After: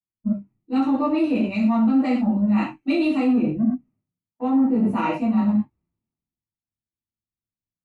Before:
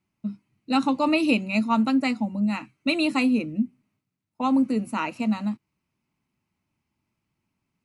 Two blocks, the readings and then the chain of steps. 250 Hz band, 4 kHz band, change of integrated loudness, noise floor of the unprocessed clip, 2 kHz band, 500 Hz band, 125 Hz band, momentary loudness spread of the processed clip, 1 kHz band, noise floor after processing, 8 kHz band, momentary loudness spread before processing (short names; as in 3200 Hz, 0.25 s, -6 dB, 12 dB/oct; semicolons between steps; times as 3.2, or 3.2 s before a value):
+4.0 dB, -7.5 dB, +3.0 dB, -82 dBFS, -5.0 dB, +2.5 dB, +5.5 dB, 8 LU, 0.0 dB, under -85 dBFS, n/a, 10 LU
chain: tilt -4.5 dB/oct; in parallel at -6 dB: soft clip -15 dBFS, distortion -11 dB; on the sum: low shelf 240 Hz -7 dB; non-linear reverb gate 0.15 s falling, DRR -7 dB; spectral noise reduction 10 dB; reverse; compressor 6:1, threshold -16 dBFS, peak gain reduction 13.5 dB; reverse; limiter -13 dBFS, peak gain reduction 6 dB; three-band expander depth 70%